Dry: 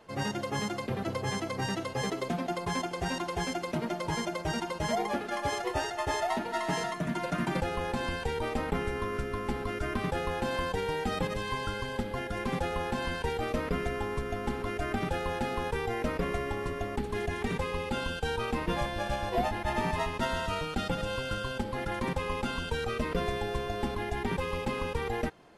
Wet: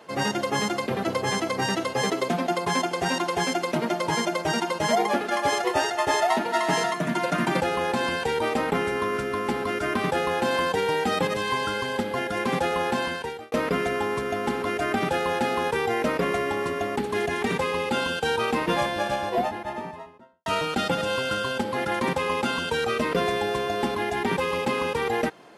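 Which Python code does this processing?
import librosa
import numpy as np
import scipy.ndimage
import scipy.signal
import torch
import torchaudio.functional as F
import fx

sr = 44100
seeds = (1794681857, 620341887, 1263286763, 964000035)

y = fx.studio_fade_out(x, sr, start_s=18.78, length_s=1.68)
y = fx.edit(y, sr, fx.fade_out_span(start_s=12.95, length_s=0.57), tone=tone)
y = scipy.signal.sosfilt(scipy.signal.bessel(2, 220.0, 'highpass', norm='mag', fs=sr, output='sos'), y)
y = y * 10.0 ** (8.5 / 20.0)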